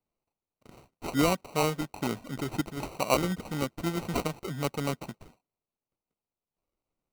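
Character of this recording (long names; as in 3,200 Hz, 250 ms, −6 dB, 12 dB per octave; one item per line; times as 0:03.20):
aliases and images of a low sample rate 1,700 Hz, jitter 0%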